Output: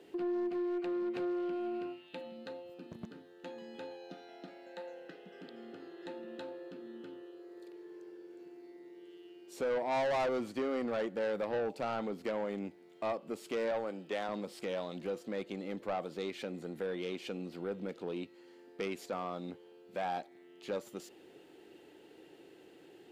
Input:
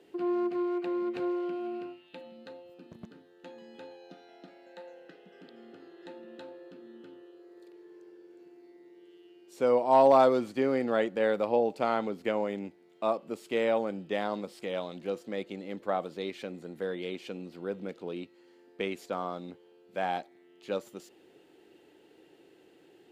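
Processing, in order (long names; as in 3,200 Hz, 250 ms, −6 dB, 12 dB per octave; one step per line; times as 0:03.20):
0:13.71–0:14.29: Bessel high-pass filter 330 Hz, order 2
in parallel at +1 dB: downward compressor, threshold −38 dBFS, peak gain reduction 19.5 dB
on the sum: soft clipping −24.5 dBFS, distortion −8 dB
level −4.5 dB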